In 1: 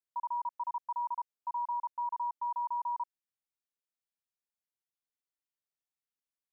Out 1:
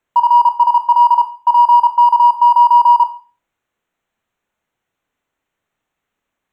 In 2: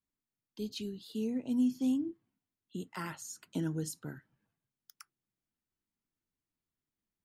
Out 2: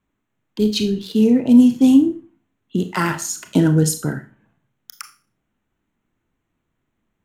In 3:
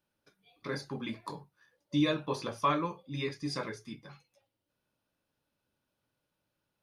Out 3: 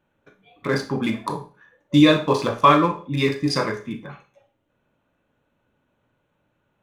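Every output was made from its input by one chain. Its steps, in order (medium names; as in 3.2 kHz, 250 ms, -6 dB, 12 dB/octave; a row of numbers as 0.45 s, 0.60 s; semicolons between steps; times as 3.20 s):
local Wiener filter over 9 samples; Schroeder reverb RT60 0.36 s, combs from 26 ms, DRR 8 dB; peak normalisation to -3 dBFS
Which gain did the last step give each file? +25.0 dB, +20.0 dB, +14.0 dB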